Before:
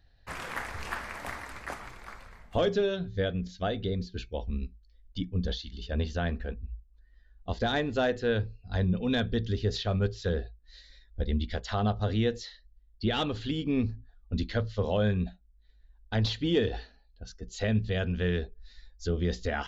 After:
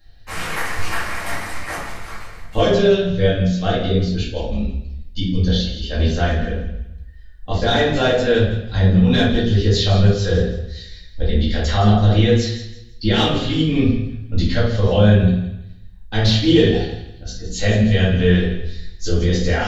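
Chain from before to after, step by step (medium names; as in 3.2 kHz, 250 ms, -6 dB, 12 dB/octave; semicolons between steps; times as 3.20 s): treble shelf 3.3 kHz +7.5 dB; thinning echo 165 ms, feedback 32%, high-pass 640 Hz, level -12 dB; simulated room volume 110 m³, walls mixed, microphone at 2.2 m; trim +1.5 dB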